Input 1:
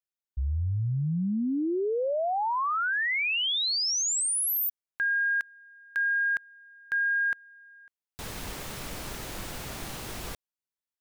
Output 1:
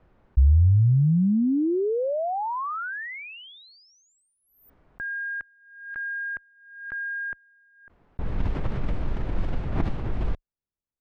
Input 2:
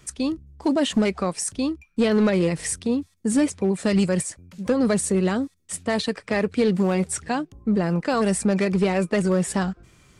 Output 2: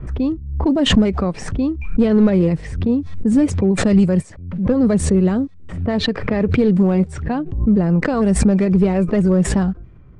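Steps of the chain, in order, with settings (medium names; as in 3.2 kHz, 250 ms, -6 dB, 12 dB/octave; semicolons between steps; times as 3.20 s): tilt EQ -3.5 dB/octave; level-controlled noise filter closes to 1.4 kHz, open at -10 dBFS; swell ahead of each attack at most 69 dB/s; trim -1 dB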